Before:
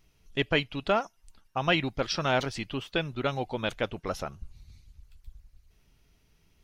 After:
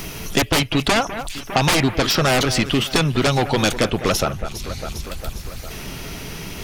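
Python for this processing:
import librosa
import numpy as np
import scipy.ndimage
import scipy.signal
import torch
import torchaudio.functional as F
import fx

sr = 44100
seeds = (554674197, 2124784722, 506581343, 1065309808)

y = fx.high_shelf(x, sr, hz=8800.0, db=fx.steps((0.0, 10.5), (4.39, 2.5)))
y = fx.fold_sine(y, sr, drive_db=15, ceiling_db=-10.5)
y = fx.echo_alternate(y, sr, ms=202, hz=2400.0, feedback_pct=60, wet_db=-13.5)
y = fx.band_squash(y, sr, depth_pct=70)
y = F.gain(torch.from_numpy(y), -2.0).numpy()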